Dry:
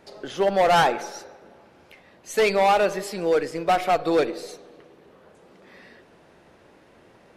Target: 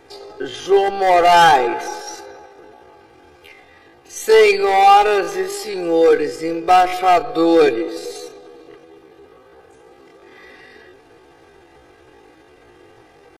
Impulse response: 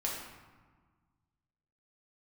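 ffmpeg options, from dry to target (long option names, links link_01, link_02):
-af "aecho=1:1:2.5:0.81,atempo=0.55,volume=4.5dB"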